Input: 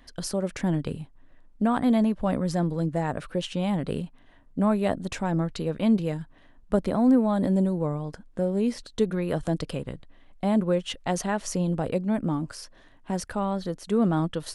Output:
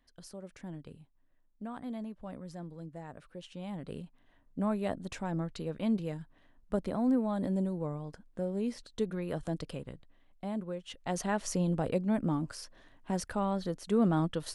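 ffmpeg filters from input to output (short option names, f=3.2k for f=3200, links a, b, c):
-af "volume=3dB,afade=t=in:st=3.35:d=1.24:silence=0.334965,afade=t=out:st=9.68:d=1.14:silence=0.446684,afade=t=in:st=10.82:d=0.52:silence=0.266073"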